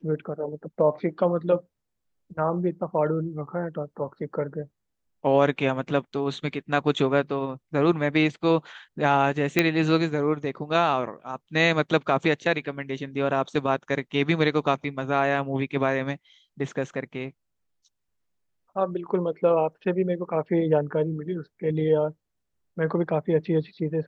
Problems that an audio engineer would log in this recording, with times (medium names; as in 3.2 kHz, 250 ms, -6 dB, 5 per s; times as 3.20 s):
9.59 s: pop -5 dBFS